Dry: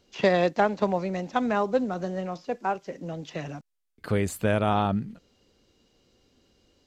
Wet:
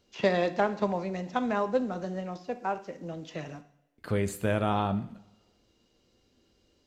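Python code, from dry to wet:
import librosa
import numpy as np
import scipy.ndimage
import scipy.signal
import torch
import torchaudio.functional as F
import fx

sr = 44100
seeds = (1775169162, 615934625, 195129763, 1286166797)

y = fx.rev_double_slope(x, sr, seeds[0], early_s=0.56, late_s=1.6, knee_db=-20, drr_db=9.5)
y = y * 10.0 ** (-4.0 / 20.0)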